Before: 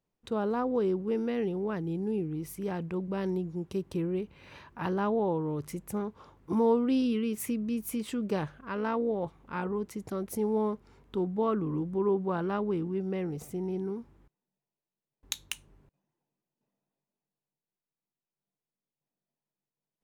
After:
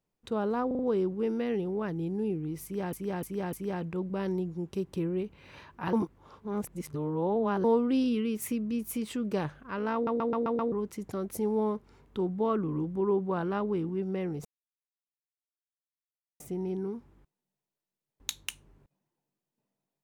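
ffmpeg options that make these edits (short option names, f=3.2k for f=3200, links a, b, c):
-filter_complex "[0:a]asplit=16[a][b][c][d][e][f][g][h][i][j][k][l][m][n][o][p];[a]atrim=end=0.712[q];[b]atrim=start=0.668:end=0.712[r];[c]atrim=start=0.668:end=0.712[s];[d]atrim=start=0.668:end=2.812[t];[e]atrim=start=2.508:end=2.812[u];[f]atrim=start=2.508:end=2.812[v];[g]atrim=start=2.508:end=4.912[w];[h]atrim=start=4.908:end=6.622,asetpts=PTS-STARTPTS,areverse[x];[i]atrim=start=6.618:end=9.052[y];[j]atrim=start=8.918:end=9.052[z];[k]atrim=start=8.918:end=9.052[aa];[l]atrim=start=8.918:end=9.052[ab];[m]atrim=start=8.918:end=9.052[ac];[n]atrim=start=8.918:end=9.052[ad];[o]atrim=start=9.698:end=13.43,asetpts=PTS-STARTPTS,afade=t=out:st=3.728:d=0.004:c=hsin,apad=pad_dur=1.95[ae];[p]atrim=start=13.43,asetpts=PTS-STARTPTS,afade=t=in:d=0.004:c=hsin[af];[q][r]acrossfade=d=0.004:c1=hsin:c2=hsin[ag];[ag][s]acrossfade=d=0.004:c1=hsin:c2=hsin[ah];[ah][t]acrossfade=d=0.004:c1=hsin:c2=hsin[ai];[ai][u]acrossfade=d=0.004:c1=hsin:c2=hsin[aj];[aj][v]acrossfade=d=0.004:c1=hsin:c2=hsin[ak];[ak][w]acrossfade=d=0.004:c1=hsin:c2=hsin[al];[al][x]acrossfade=d=0.004:c1=hsin:c2=hsin[am];[am][y]acrossfade=d=0.004:c1=hsin:c2=hsin[an];[an][z]acrossfade=d=0.004:c1=hsin:c2=hsin[ao];[ao][aa]acrossfade=d=0.004:c1=hsin:c2=hsin[ap];[ap][ab]acrossfade=d=0.004:c1=hsin:c2=hsin[aq];[aq][ac]acrossfade=d=0.004:c1=hsin:c2=hsin[ar];[ar][ad]acrossfade=d=0.004:c1=hsin:c2=hsin[as];[ae][af]concat=n=2:v=0:a=1[at];[as][at]acrossfade=d=0.004:c1=hsin:c2=hsin"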